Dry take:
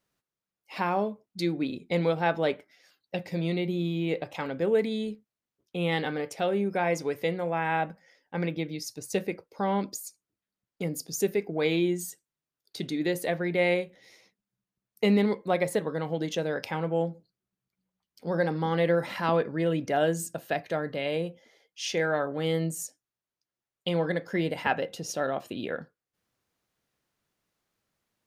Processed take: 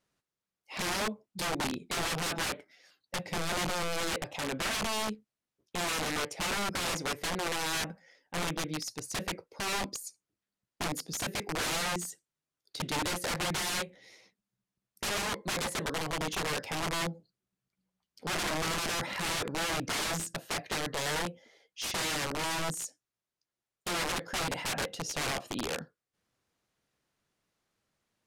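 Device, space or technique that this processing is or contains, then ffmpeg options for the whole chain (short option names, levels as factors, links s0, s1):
overflowing digital effects unit: -af "aeval=exprs='(mod(22.4*val(0)+1,2)-1)/22.4':c=same,lowpass=11000"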